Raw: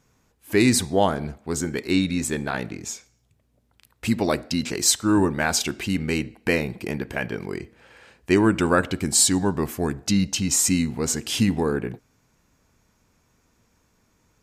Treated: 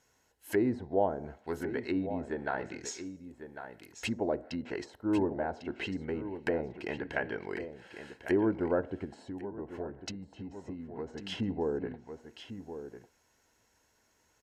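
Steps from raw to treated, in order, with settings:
treble cut that deepens with the level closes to 610 Hz, closed at −20 dBFS
single-tap delay 1,099 ms −10.5 dB
0:09.04–0:11.32: downward compressor 6 to 1, threshold −27 dBFS, peak gain reduction 10.5 dB
parametric band 170 Hz −12.5 dB 2 octaves
notch comb filter 1,200 Hz
level −1.5 dB

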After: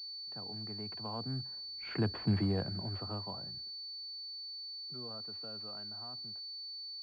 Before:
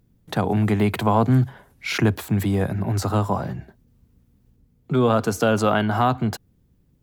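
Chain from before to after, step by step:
source passing by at 0:02.32, 6 m/s, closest 1.3 metres
switching amplifier with a slow clock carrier 4,500 Hz
level −8.5 dB

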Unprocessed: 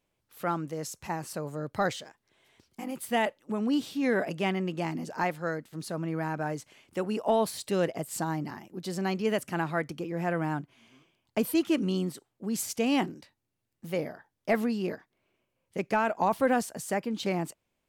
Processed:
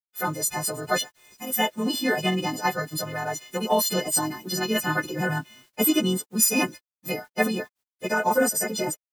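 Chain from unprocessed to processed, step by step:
every partial snapped to a pitch grid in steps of 3 semitones
bit-depth reduction 10 bits, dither none
time stretch by phase vocoder 0.51×
level +7 dB

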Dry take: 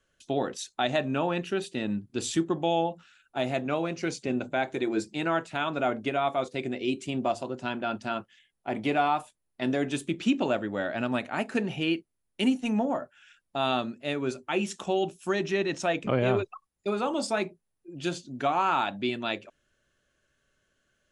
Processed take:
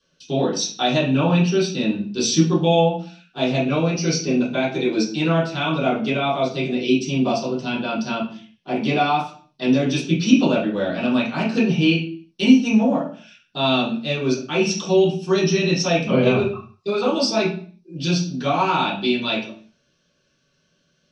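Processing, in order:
flat-topped bell 3,700 Hz +14.5 dB
convolution reverb RT60 0.45 s, pre-delay 3 ms, DRR −11 dB
dynamic equaliser 5,700 Hz, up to +5 dB, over −34 dBFS, Q 5.6
level −11.5 dB

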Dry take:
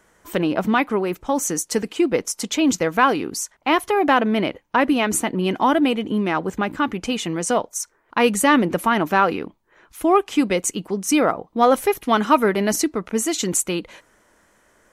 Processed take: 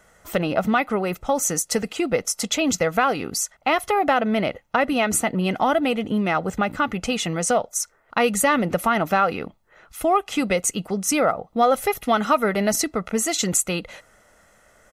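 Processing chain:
comb filter 1.5 ms, depth 54%
downward compressor 2 to 1, threshold −20 dBFS, peak gain reduction 6.5 dB
level +1.5 dB

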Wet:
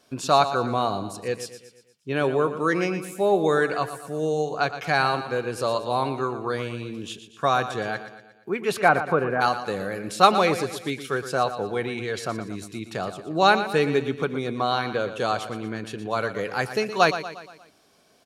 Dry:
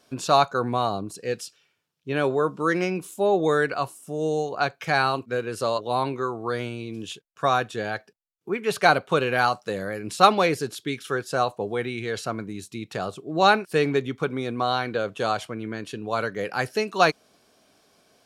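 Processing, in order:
0:08.79–0:09.40: low-pass filter 2,600 Hz → 1,500 Hz 24 dB per octave
repeating echo 118 ms, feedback 50%, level −11.5 dB

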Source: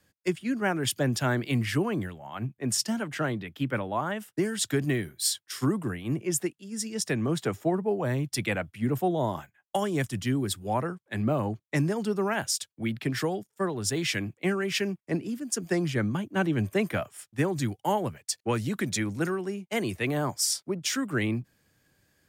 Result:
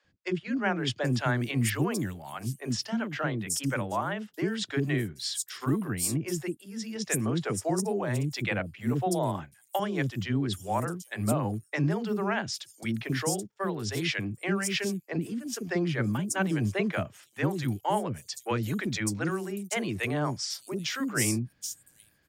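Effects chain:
three-band delay without the direct sound mids, lows, highs 40/780 ms, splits 410/5,800 Hz

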